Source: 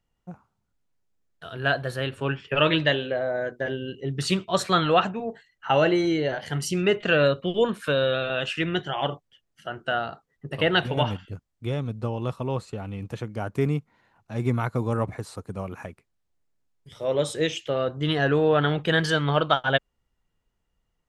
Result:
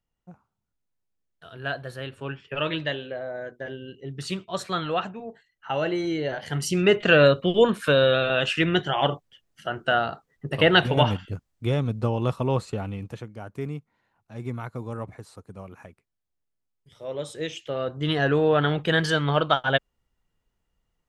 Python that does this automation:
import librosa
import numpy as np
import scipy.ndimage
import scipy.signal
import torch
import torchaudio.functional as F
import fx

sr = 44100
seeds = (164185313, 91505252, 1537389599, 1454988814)

y = fx.gain(x, sr, db=fx.line((5.75, -6.5), (7.01, 4.0), (12.8, 4.0), (13.37, -8.0), (17.26, -8.0), (18.13, 0.0)))